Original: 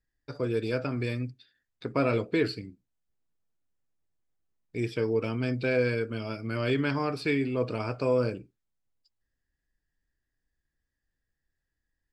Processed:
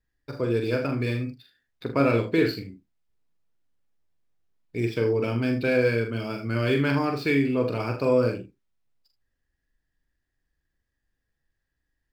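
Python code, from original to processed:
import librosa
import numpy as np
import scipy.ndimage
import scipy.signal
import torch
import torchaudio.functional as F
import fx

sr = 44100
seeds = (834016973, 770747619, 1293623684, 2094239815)

y = scipy.ndimage.median_filter(x, 5, mode='constant')
y = fx.room_early_taps(y, sr, ms=(43, 79), db=(-6.0, -12.5))
y = F.gain(torch.from_numpy(y), 3.0).numpy()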